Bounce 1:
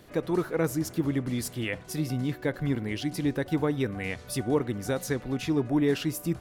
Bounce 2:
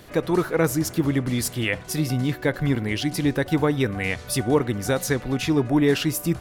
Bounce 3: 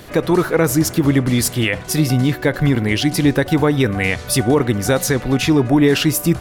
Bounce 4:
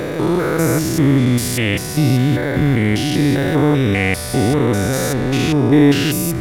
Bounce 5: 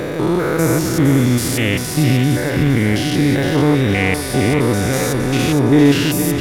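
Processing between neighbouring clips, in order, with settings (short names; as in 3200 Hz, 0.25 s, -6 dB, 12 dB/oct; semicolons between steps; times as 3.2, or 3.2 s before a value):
bell 280 Hz -3.5 dB 2.5 oct; gain +8.5 dB
limiter -13.5 dBFS, peak gain reduction 5 dB; gain +8 dB
stepped spectrum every 0.2 s; gain +3.5 dB
thinning echo 0.462 s, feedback 49%, level -6.5 dB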